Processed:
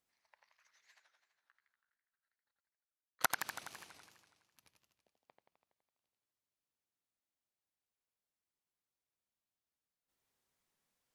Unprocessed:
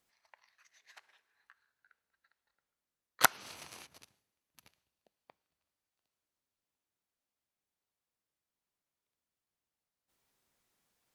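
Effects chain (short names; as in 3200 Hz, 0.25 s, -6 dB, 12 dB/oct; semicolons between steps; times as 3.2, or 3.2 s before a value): 0.94–3.33 level quantiser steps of 21 dB; warbling echo 83 ms, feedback 68%, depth 218 cents, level -5 dB; gain -7.5 dB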